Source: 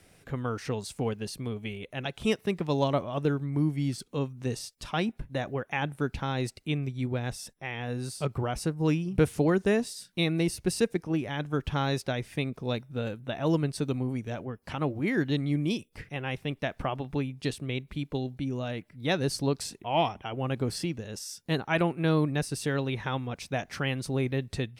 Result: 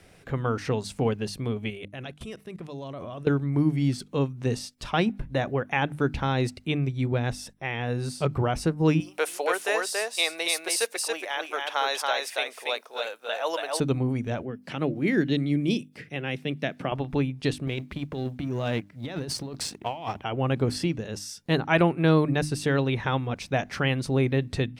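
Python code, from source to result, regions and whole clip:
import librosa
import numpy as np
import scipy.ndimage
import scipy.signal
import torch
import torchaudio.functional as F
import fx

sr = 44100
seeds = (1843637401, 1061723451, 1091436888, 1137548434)

y = fx.chain(x, sr, fx.peak_eq(hz=10000.0, db=7.5, octaves=0.91),
    fx.notch(hz=870.0, q=8.8),
    fx.level_steps(step_db=21), at=(1.7, 3.27))
y = fx.chain(y, sr, fx.highpass(hz=570.0, slope=24),
    fx.high_shelf(hz=6100.0, db=12.0),
    fx.echo_single(ms=280, db=-3.0), at=(9.0, 13.8))
y = fx.chain(y, sr, fx.highpass(hz=140.0, slope=24),
    fx.peak_eq(hz=970.0, db=-9.0, octaves=1.1), at=(14.42, 16.92))
y = fx.chain(y, sr, fx.law_mismatch(coded='A'),
    fx.highpass(hz=60.0, slope=12),
    fx.over_compress(threshold_db=-36.0, ratio=-1.0), at=(17.67, 20.24))
y = fx.high_shelf(y, sr, hz=6600.0, db=-8.5)
y = fx.hum_notches(y, sr, base_hz=50, count=6)
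y = F.gain(torch.from_numpy(y), 5.5).numpy()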